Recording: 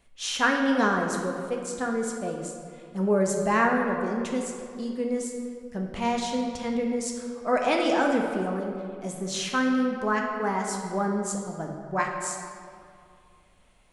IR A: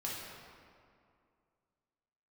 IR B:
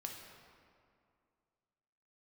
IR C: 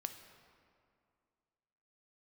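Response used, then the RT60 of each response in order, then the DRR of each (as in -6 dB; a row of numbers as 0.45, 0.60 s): B; 2.3, 2.3, 2.3 s; -5.5, 1.0, 7.0 dB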